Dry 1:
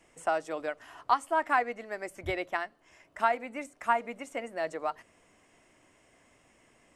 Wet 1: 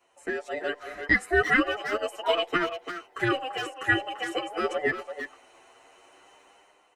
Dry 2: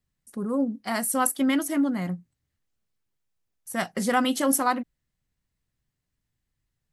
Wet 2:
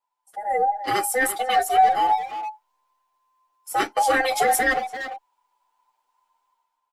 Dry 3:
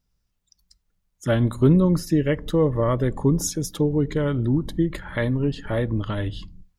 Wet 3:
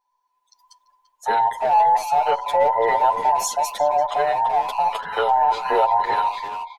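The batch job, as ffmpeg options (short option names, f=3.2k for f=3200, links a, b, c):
-filter_complex "[0:a]afftfilt=real='real(if(between(b,1,1008),(2*floor((b-1)/48)+1)*48-b,b),0)':imag='imag(if(between(b,1,1008),(2*floor((b-1)/48)+1)*48-b,b),0)*if(between(b,1,1008),-1,1)':win_size=2048:overlap=0.75,bass=f=250:g=-13,treble=f=4k:g=-4,dynaudnorm=f=120:g=9:m=11.5dB,alimiter=limit=-8dB:level=0:latency=1:release=14,asplit=2[a][b];[b]adelay=340,highpass=300,lowpass=3.4k,asoftclip=type=hard:threshold=-18dB,volume=-8dB[c];[a][c]amix=inputs=2:normalize=0,aeval=exprs='0.473*(cos(1*acos(clip(val(0)/0.473,-1,1)))-cos(1*PI/2))+0.0168*(cos(2*acos(clip(val(0)/0.473,-1,1)))-cos(2*PI/2))':c=same,asplit=2[d][e];[e]adelay=8.6,afreqshift=0.36[f];[d][f]amix=inputs=2:normalize=1"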